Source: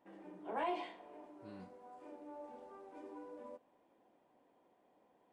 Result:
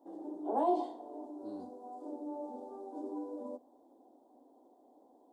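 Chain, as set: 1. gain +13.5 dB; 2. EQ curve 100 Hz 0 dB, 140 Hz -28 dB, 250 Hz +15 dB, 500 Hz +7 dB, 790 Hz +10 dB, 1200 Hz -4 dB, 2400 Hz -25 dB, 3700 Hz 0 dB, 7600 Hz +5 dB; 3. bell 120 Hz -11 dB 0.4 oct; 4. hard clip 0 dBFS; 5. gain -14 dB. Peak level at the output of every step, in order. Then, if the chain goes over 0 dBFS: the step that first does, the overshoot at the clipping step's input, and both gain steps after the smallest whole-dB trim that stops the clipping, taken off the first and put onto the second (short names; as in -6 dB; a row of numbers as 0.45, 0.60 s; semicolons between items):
-14.0, -6.0, -6.0, -6.0, -20.0 dBFS; no overload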